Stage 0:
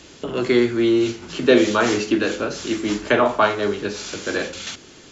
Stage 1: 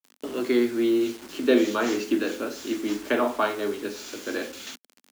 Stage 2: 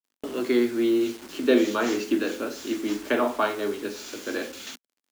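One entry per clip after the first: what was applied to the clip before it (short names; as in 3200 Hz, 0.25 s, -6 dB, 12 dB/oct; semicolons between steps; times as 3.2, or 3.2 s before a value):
bit-crush 6-bit; resonant low shelf 200 Hz -7 dB, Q 3; gain -8 dB
gate -47 dBFS, range -20 dB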